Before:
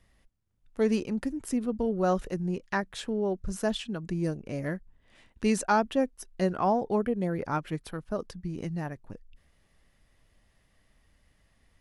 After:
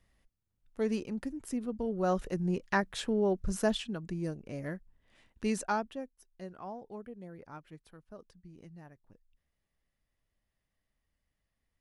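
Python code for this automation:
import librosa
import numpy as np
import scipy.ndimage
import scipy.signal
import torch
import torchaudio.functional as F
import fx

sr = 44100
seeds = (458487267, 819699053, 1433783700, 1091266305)

y = fx.gain(x, sr, db=fx.line((1.81, -6.0), (2.6, 0.5), (3.61, 0.5), (4.19, -6.0), (5.69, -6.0), (6.11, -17.5)))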